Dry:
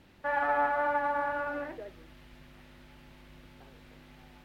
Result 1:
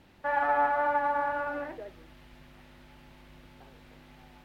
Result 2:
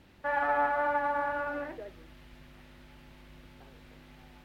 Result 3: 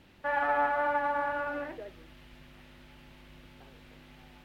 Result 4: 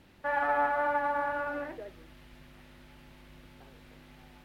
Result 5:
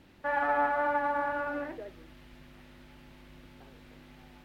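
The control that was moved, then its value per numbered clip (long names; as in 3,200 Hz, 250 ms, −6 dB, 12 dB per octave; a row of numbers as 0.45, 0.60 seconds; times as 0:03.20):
parametric band, centre frequency: 820, 64, 2,900, 11,000, 290 Hertz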